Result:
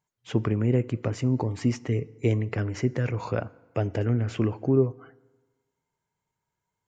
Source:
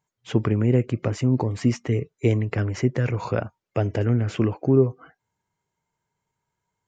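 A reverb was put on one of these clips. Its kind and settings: FDN reverb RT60 1.3 s, low-frequency decay 0.95×, high-frequency decay 0.7×, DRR 19.5 dB; trim -3.5 dB

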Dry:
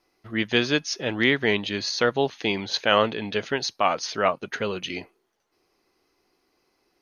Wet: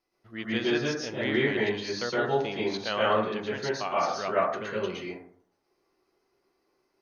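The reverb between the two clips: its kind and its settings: plate-style reverb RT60 0.64 s, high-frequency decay 0.3×, pre-delay 105 ms, DRR -7 dB; trim -12 dB

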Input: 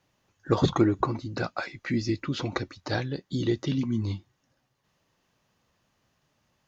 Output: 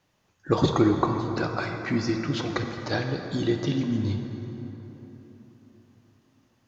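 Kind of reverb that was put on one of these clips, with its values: plate-style reverb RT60 4 s, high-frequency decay 0.55×, DRR 4 dB; trim +1 dB

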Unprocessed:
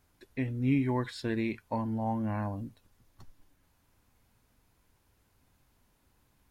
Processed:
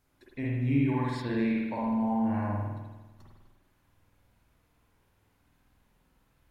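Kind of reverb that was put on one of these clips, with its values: spring tank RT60 1.2 s, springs 49 ms, chirp 35 ms, DRR -4.5 dB; trim -4 dB

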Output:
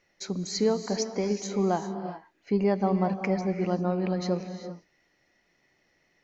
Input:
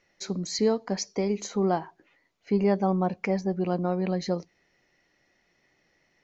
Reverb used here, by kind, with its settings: gated-style reverb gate 420 ms rising, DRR 8 dB; trim -1 dB

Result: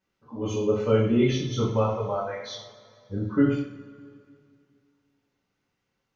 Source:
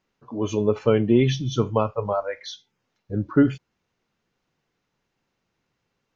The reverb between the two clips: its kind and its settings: two-slope reverb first 0.55 s, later 2.4 s, from -18 dB, DRR -6.5 dB; trim -9.5 dB

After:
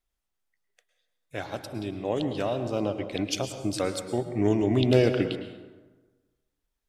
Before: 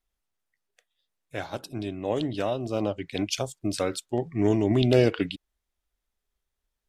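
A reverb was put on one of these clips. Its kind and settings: plate-style reverb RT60 1.3 s, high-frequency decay 0.55×, pre-delay 95 ms, DRR 8.5 dB; trim -1 dB

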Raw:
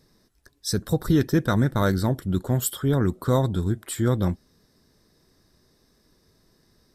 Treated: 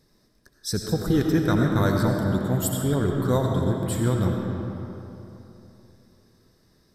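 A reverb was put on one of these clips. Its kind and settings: algorithmic reverb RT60 3.2 s, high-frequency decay 0.6×, pre-delay 45 ms, DRR 1 dB; trim -2 dB

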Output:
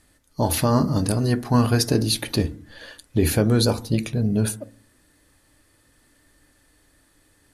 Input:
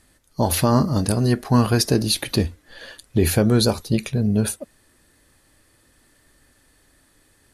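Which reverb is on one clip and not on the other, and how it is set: FDN reverb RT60 0.43 s, low-frequency decay 1.55×, high-frequency decay 0.25×, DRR 11.5 dB; trim -2 dB

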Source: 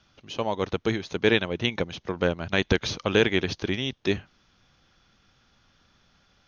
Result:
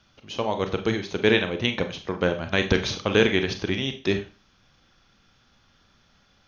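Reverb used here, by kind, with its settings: Schroeder reverb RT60 0.33 s, combs from 29 ms, DRR 7 dB; trim +1 dB

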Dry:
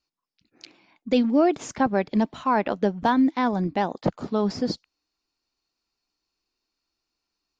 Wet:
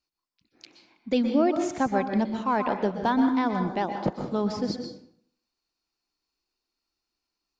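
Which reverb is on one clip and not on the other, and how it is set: plate-style reverb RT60 0.63 s, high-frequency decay 0.7×, pre-delay 110 ms, DRR 5.5 dB; trim -3.5 dB

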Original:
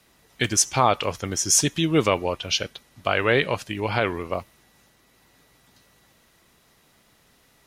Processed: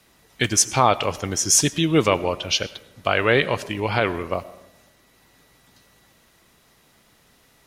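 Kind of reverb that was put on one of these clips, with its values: algorithmic reverb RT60 0.97 s, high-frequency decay 0.45×, pre-delay 60 ms, DRR 17 dB; trim +2 dB

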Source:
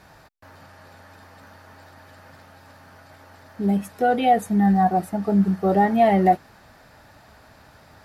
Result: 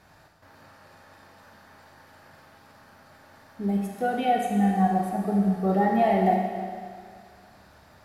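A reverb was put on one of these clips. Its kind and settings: Schroeder reverb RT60 2 s, combs from 28 ms, DRR 0.5 dB; trim -6.5 dB

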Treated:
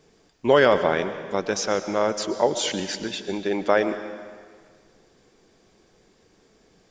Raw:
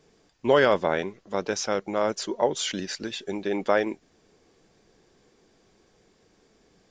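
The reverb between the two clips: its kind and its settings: algorithmic reverb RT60 1.8 s, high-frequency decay 0.95×, pre-delay 80 ms, DRR 10.5 dB; trim +2.5 dB

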